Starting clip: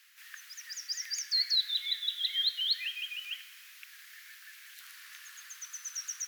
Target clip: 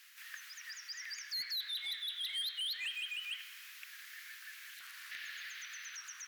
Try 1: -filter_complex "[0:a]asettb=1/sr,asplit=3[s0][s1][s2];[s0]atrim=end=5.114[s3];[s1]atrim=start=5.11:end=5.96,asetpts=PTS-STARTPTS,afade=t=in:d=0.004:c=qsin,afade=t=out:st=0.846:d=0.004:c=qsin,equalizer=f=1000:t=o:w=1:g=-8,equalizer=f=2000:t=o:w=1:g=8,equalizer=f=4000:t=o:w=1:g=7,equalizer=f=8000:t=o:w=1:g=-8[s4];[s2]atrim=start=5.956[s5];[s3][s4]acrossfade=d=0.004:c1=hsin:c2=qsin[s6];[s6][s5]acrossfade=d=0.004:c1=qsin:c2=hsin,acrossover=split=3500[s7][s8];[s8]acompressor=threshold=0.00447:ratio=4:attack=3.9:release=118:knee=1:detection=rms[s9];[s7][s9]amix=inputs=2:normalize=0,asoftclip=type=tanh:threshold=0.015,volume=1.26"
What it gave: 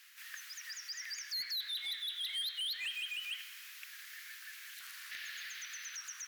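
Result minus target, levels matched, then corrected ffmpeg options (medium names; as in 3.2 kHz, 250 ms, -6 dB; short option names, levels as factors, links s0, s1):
compression: peak gain reduction -5 dB
-filter_complex "[0:a]asettb=1/sr,asplit=3[s0][s1][s2];[s0]atrim=end=5.114[s3];[s1]atrim=start=5.11:end=5.96,asetpts=PTS-STARTPTS,afade=t=in:d=0.004:c=qsin,afade=t=out:st=0.846:d=0.004:c=qsin,equalizer=f=1000:t=o:w=1:g=-8,equalizer=f=2000:t=o:w=1:g=8,equalizer=f=4000:t=o:w=1:g=7,equalizer=f=8000:t=o:w=1:g=-8[s4];[s2]atrim=start=5.956[s5];[s3][s4]acrossfade=d=0.004:c1=hsin:c2=qsin[s6];[s6][s5]acrossfade=d=0.004:c1=qsin:c2=hsin,acrossover=split=3500[s7][s8];[s8]acompressor=threshold=0.002:ratio=4:attack=3.9:release=118:knee=1:detection=rms[s9];[s7][s9]amix=inputs=2:normalize=0,asoftclip=type=tanh:threshold=0.015,volume=1.26"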